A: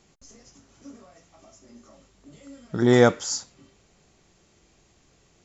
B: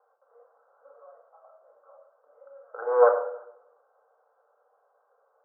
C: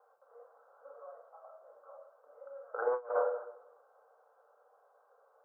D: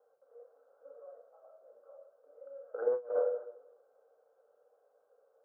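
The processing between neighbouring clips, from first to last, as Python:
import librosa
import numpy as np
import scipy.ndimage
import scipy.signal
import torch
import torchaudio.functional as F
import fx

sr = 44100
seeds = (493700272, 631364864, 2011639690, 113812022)

y1 = fx.self_delay(x, sr, depth_ms=0.37)
y1 = scipy.signal.sosfilt(scipy.signal.cheby1(5, 1.0, [460.0, 1500.0], 'bandpass', fs=sr, output='sos'), y1)
y1 = fx.room_shoebox(y1, sr, seeds[0], volume_m3=1900.0, walls='furnished', distance_m=2.1)
y2 = fx.over_compress(y1, sr, threshold_db=-27.0, ratio=-0.5)
y2 = F.gain(torch.from_numpy(y2), -4.5).numpy()
y3 = fx.graphic_eq(y2, sr, hz=(125, 250, 500, 1000), db=(5, 11, 7, -11))
y3 = F.gain(torch.from_numpy(y3), -5.5).numpy()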